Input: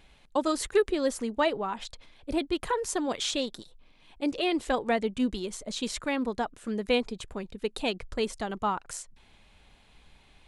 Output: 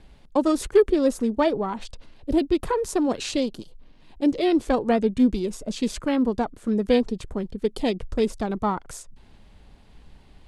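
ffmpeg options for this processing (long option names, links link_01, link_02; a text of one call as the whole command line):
ffmpeg -i in.wav -filter_complex "[0:a]acrossover=split=450|1900[link_01][link_02][link_03];[link_01]acontrast=79[link_04];[link_03]aeval=exprs='val(0)*sin(2*PI*620*n/s)':channel_layout=same[link_05];[link_04][link_02][link_05]amix=inputs=3:normalize=0,volume=2.5dB" out.wav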